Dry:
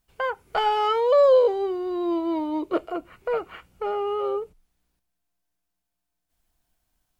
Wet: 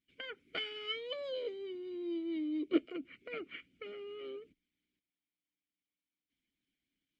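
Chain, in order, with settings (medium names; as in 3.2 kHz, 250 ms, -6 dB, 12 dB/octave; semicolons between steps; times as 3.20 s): vowel filter i; harmonic-percussive split harmonic -11 dB; trim +10.5 dB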